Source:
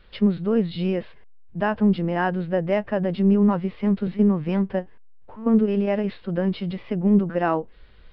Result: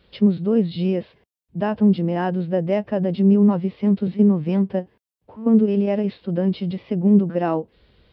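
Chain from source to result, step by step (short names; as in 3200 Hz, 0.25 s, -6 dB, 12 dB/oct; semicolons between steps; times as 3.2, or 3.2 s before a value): HPF 84 Hz; bell 1500 Hz -9.5 dB 1.7 oct; gain +3.5 dB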